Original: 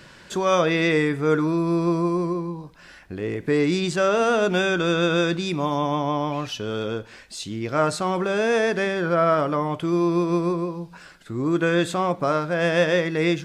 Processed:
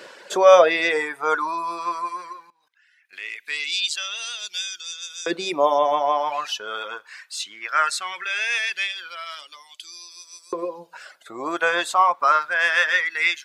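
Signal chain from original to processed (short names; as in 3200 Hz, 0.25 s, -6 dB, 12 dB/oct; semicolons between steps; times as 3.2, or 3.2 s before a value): 2.5–3.13 level quantiser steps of 22 dB; reverb removal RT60 1.3 s; LFO high-pass saw up 0.19 Hz 450–6500 Hz; gain +4 dB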